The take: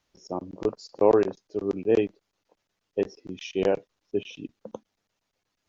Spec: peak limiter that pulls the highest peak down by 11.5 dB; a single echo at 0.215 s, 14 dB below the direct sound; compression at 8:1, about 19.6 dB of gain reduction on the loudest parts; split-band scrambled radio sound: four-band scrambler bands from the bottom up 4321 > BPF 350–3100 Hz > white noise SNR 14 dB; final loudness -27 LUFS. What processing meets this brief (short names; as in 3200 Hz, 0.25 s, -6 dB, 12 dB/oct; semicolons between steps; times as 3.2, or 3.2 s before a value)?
compressor 8:1, threshold -35 dBFS; limiter -31 dBFS; echo 0.215 s -14 dB; four-band scrambler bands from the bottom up 4321; BPF 350–3100 Hz; white noise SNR 14 dB; gain +22 dB